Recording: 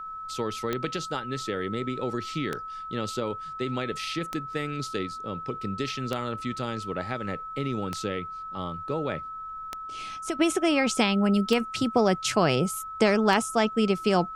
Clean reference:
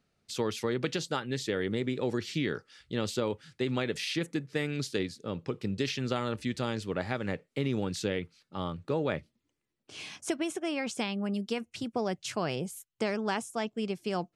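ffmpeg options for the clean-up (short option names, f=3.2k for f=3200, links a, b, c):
-af "adeclick=t=4,bandreject=f=1.3k:w=30,agate=range=-21dB:threshold=-30dB,asetnsamples=n=441:p=0,asendcmd='10.39 volume volume -9.5dB',volume=0dB"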